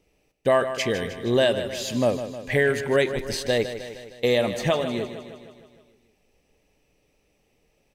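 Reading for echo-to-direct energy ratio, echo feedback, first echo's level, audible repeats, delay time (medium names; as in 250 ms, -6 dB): -9.0 dB, 59%, -11.0 dB, 6, 155 ms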